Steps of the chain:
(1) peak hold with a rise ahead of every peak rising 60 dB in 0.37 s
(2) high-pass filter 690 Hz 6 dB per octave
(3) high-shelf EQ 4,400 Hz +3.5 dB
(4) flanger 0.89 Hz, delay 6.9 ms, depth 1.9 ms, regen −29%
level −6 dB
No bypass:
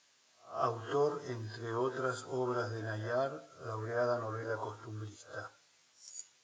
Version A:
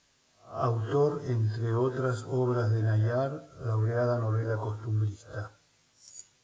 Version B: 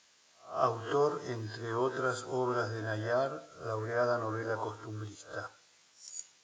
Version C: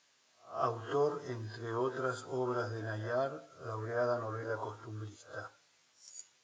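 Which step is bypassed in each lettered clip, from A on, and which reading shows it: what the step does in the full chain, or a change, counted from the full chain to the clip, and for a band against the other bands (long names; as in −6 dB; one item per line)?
2, 125 Hz band +12.5 dB
4, change in integrated loudness +2.5 LU
3, 8 kHz band −2.5 dB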